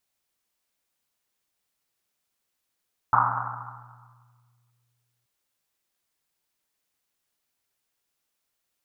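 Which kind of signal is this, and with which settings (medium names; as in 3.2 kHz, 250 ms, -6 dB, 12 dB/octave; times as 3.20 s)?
Risset drum length 2.13 s, pitch 120 Hz, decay 2.78 s, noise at 1.1 kHz, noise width 580 Hz, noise 80%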